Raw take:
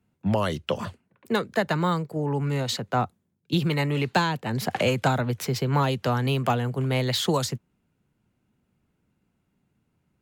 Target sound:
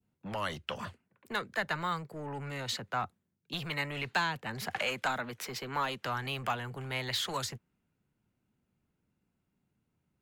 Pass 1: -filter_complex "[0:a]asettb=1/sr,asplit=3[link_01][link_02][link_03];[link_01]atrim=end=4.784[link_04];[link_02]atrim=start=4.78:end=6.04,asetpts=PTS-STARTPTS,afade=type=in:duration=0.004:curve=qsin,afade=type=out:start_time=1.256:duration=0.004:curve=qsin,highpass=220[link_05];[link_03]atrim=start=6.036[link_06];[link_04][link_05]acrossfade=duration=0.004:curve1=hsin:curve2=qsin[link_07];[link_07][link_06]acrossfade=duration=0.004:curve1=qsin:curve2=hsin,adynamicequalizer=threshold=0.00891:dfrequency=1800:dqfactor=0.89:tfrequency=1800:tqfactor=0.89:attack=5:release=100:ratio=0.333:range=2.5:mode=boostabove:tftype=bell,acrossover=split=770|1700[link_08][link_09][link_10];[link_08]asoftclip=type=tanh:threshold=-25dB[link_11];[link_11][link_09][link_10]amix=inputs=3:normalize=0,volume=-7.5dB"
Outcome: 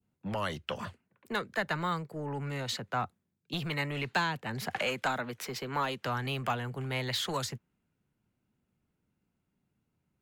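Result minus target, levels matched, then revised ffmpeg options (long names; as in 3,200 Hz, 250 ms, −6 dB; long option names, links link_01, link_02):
soft clipping: distortion −5 dB
-filter_complex "[0:a]asettb=1/sr,asplit=3[link_01][link_02][link_03];[link_01]atrim=end=4.784[link_04];[link_02]atrim=start=4.78:end=6.04,asetpts=PTS-STARTPTS,afade=type=in:duration=0.004:curve=qsin,afade=type=out:start_time=1.256:duration=0.004:curve=qsin,highpass=220[link_05];[link_03]atrim=start=6.036[link_06];[link_04][link_05]acrossfade=duration=0.004:curve1=hsin:curve2=qsin[link_07];[link_07][link_06]acrossfade=duration=0.004:curve1=qsin:curve2=hsin,adynamicequalizer=threshold=0.00891:dfrequency=1800:dqfactor=0.89:tfrequency=1800:tqfactor=0.89:attack=5:release=100:ratio=0.333:range=2.5:mode=boostabove:tftype=bell,acrossover=split=770|1700[link_08][link_09][link_10];[link_08]asoftclip=type=tanh:threshold=-31.5dB[link_11];[link_11][link_09][link_10]amix=inputs=3:normalize=0,volume=-7.5dB"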